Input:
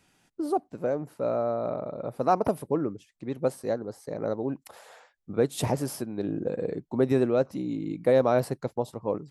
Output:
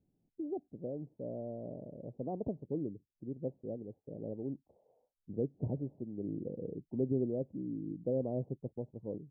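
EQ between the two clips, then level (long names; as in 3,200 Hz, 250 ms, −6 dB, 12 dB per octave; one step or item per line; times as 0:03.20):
Gaussian smoothing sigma 18 samples
−6.0 dB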